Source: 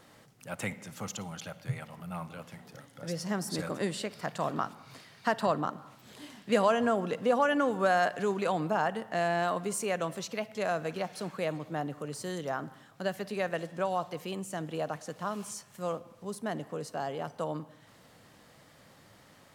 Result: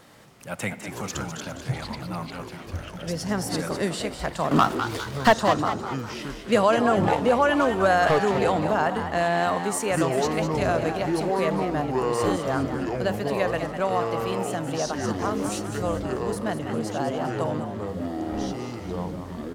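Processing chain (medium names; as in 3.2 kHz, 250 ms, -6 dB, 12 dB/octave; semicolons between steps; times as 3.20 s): 4.51–5.33 s: waveshaping leveller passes 3; ever faster or slower copies 201 ms, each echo -7 st, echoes 3, each echo -6 dB; frequency-shifting echo 203 ms, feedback 45%, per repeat +92 Hz, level -9 dB; trim +5.5 dB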